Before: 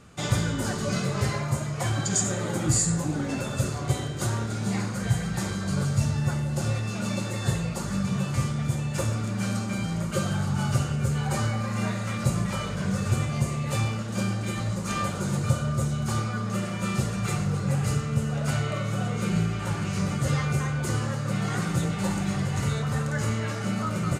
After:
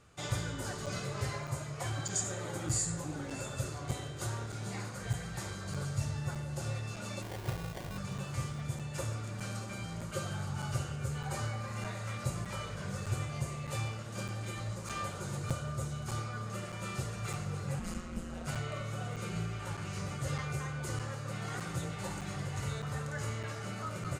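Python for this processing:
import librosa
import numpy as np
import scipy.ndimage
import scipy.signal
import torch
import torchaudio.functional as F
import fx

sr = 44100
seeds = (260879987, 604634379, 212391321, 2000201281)

p1 = fx.sample_hold(x, sr, seeds[0], rate_hz=1300.0, jitter_pct=0, at=(7.22, 7.98))
p2 = fx.peak_eq(p1, sr, hz=210.0, db=-9.0, octaves=0.74)
p3 = fx.ring_mod(p2, sr, carrier_hz=86.0, at=(17.79, 18.47))
p4 = p3 + fx.echo_single(p3, sr, ms=632, db=-16.0, dry=0)
p5 = fx.buffer_crackle(p4, sr, first_s=0.86, period_s=0.61, block=256, kind='zero')
y = F.gain(torch.from_numpy(p5), -8.5).numpy()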